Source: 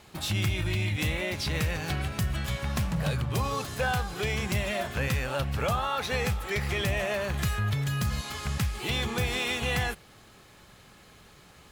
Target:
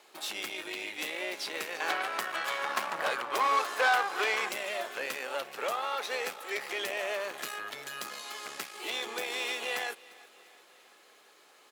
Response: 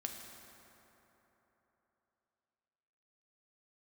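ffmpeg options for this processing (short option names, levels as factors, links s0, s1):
-filter_complex "[0:a]asettb=1/sr,asplit=3[s0][s1][s2];[s0]atrim=end=1.804[s3];[s1]atrim=start=1.8:end=4.49,asetpts=PTS-STARTPTS,afade=t=in:d=0.004:c=qsin,afade=t=out:st=2.686:d=0.004:c=qsin,equalizer=f=1200:w=0.64:g=12.5[s4];[s2]atrim=start=4.486[s5];[s3][s4]acrossfade=d=0.004:c1=hsin:c2=qsin[s6];[s6][s5]acrossfade=d=0.004:c1=qsin:c2=hsin,aeval=exprs='(tanh(10*val(0)+0.7)-tanh(0.7))/10':c=same,highpass=f=350:w=0.5412,highpass=f=350:w=1.3066,aecho=1:1:349|698|1047|1396:0.0794|0.0445|0.0249|0.0139"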